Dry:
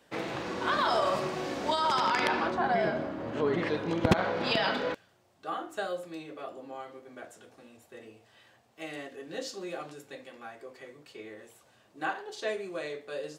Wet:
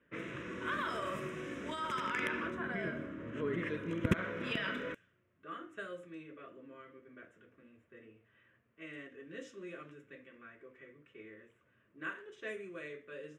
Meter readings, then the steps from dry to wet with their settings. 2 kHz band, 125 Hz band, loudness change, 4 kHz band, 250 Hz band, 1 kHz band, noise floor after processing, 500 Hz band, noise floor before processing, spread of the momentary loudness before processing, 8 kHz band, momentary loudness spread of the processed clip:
−5.0 dB, −5.0 dB, −8.5 dB, −12.0 dB, −6.0 dB, −12.5 dB, −73 dBFS, −10.5 dB, −64 dBFS, 20 LU, −11.5 dB, 21 LU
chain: phaser with its sweep stopped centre 1,900 Hz, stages 4
low-pass that shuts in the quiet parts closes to 2,100 Hz, open at −31.5 dBFS
level −4.5 dB

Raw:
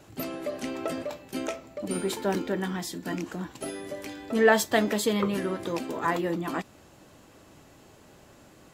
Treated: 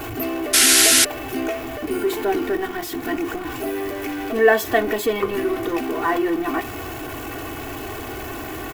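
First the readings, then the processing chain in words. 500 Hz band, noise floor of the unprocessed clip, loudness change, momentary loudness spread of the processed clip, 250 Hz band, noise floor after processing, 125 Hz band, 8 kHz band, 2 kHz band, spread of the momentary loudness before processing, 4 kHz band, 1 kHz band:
+7.0 dB, −55 dBFS, +9.5 dB, 18 LU, +5.5 dB, −32 dBFS, +0.5 dB, +19.0 dB, +8.5 dB, 13 LU, +15.5 dB, +7.0 dB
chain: converter with a step at zero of −28.5 dBFS
flat-topped bell 6,000 Hz −9 dB
comb filter 2.7 ms, depth 92%
sound drawn into the spectrogram noise, 0:00.53–0:01.05, 1,300–12,000 Hz −15 dBFS
level +1 dB

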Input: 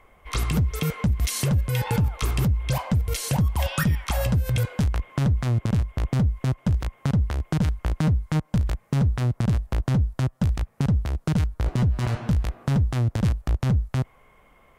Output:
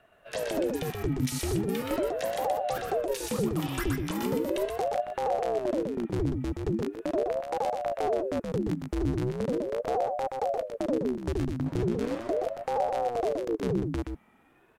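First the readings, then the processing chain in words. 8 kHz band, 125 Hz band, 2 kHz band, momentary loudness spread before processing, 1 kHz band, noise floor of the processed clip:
−6.5 dB, −14.0 dB, −6.0 dB, 3 LU, +4.0 dB, −62 dBFS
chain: single-tap delay 124 ms −4.5 dB
ring modulator whose carrier an LFO sweeps 430 Hz, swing 55%, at 0.39 Hz
level −5 dB

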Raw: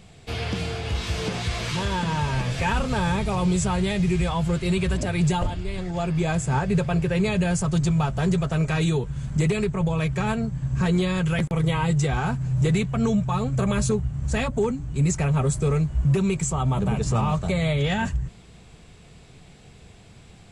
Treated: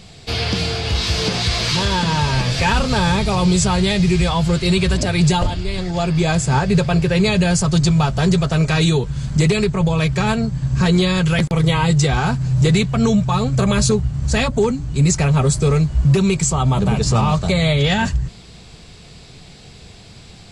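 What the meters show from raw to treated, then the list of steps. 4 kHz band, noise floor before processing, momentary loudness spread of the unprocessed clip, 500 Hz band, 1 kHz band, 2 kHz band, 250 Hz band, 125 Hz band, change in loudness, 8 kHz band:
+12.5 dB, −49 dBFS, 5 LU, +6.5 dB, +6.5 dB, +7.5 dB, +6.5 dB, +6.5 dB, +7.0 dB, +9.5 dB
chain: parametric band 4,600 Hz +10 dB 0.77 octaves
level +6.5 dB

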